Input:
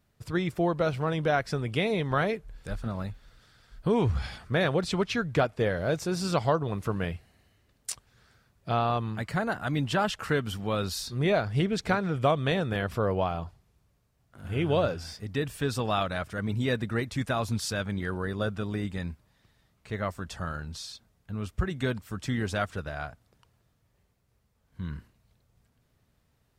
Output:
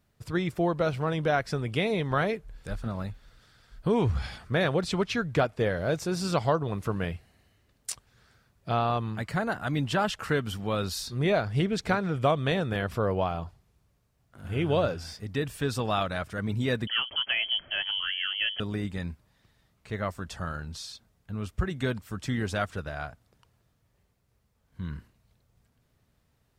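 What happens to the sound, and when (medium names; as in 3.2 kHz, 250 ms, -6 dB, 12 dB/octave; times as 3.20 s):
16.87–18.60 s: frequency inversion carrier 3.2 kHz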